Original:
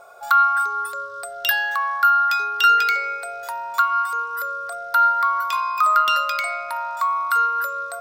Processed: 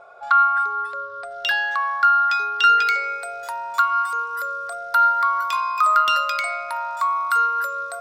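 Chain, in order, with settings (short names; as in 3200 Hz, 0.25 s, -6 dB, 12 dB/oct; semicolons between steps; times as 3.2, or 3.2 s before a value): LPF 3200 Hz 12 dB/oct, from 1.31 s 5700 Hz, from 2.87 s 12000 Hz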